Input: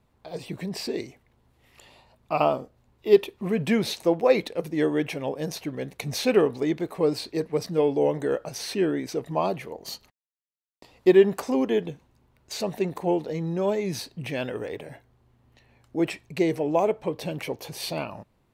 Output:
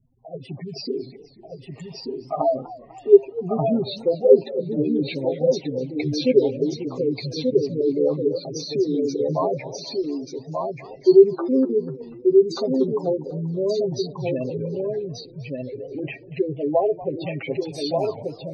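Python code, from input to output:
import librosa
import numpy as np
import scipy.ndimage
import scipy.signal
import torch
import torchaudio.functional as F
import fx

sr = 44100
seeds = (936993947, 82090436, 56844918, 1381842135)

p1 = fx.env_lowpass_down(x, sr, base_hz=1700.0, full_db=-17.5)
p2 = fx.spec_gate(p1, sr, threshold_db=-10, keep='strong')
p3 = p2 + 0.73 * np.pad(p2, (int(7.5 * sr / 1000.0), 0))[:len(p2)]
p4 = p3 + fx.echo_single(p3, sr, ms=1185, db=-3.5, dry=0)
p5 = fx.echo_warbled(p4, sr, ms=244, feedback_pct=55, rate_hz=2.8, cents=204, wet_db=-18)
y = p5 * librosa.db_to_amplitude(1.0)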